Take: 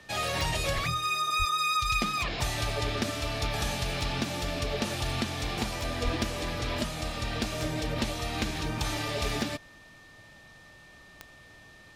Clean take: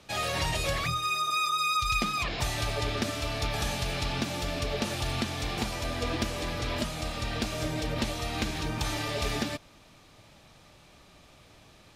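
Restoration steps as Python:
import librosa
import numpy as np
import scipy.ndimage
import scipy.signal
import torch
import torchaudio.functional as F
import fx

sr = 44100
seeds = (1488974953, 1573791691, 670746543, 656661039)

y = fx.fix_declick_ar(x, sr, threshold=10.0)
y = fx.notch(y, sr, hz=1800.0, q=30.0)
y = fx.fix_deplosive(y, sr, at_s=(0.74, 1.38, 6.04))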